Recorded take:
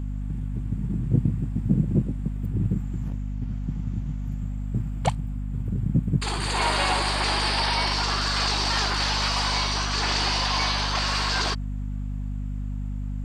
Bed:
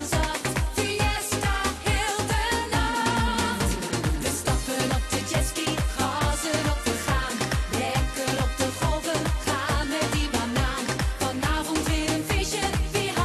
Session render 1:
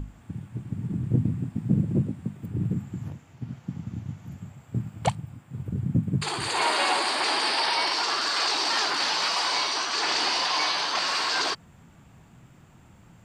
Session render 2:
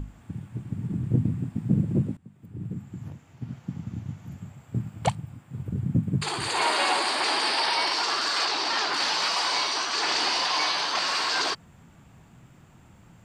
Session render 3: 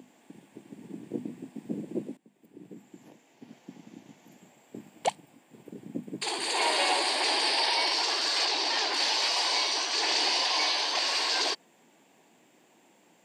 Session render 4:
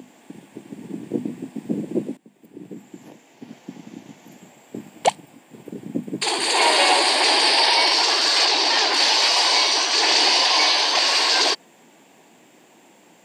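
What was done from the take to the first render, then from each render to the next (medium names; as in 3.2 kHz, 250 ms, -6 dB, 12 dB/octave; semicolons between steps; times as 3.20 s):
hum notches 50/100/150/200/250 Hz
2.17–3.50 s: fade in, from -20.5 dB; 8.45–8.93 s: distance through air 59 m
high-pass 290 Hz 24 dB/octave; peaking EQ 1.3 kHz -13 dB 0.52 oct
trim +9.5 dB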